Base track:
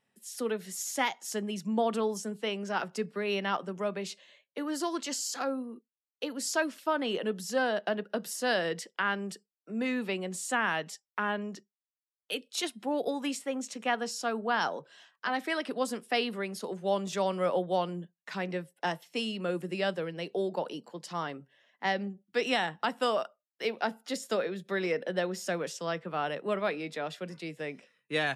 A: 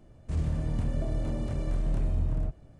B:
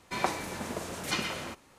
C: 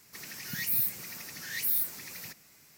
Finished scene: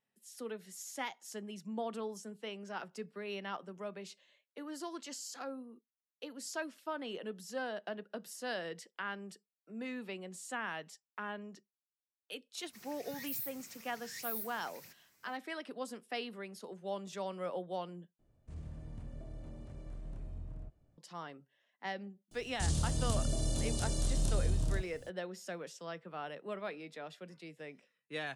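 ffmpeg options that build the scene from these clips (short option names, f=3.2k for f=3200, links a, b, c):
-filter_complex "[1:a]asplit=2[a][b];[0:a]volume=-10.5dB[c];[b]aexciter=amount=10.8:drive=4:freq=3.2k[d];[c]asplit=2[e][f];[e]atrim=end=18.194[g];[a]atrim=end=2.79,asetpts=PTS-STARTPTS,volume=-17dB[h];[f]atrim=start=20.976[i];[3:a]atrim=end=2.77,asetpts=PTS-STARTPTS,volume=-12.5dB,afade=t=in:d=0.004:c=hsin,afade=t=out:st=2.766:d=0.004:c=hsin,adelay=12600[j];[d]atrim=end=2.79,asetpts=PTS-STARTPTS,volume=-4dB,afade=t=in:d=0.004:c=hsin,afade=t=out:st=2.786:d=0.004:c=hsin,adelay=22310[k];[g][h]acrossfade=d=0.004:c1=hsin:c2=hsin[l];[l][i]acrossfade=d=0.004:c1=hsin:c2=hsin[m];[m][j][k]amix=inputs=3:normalize=0"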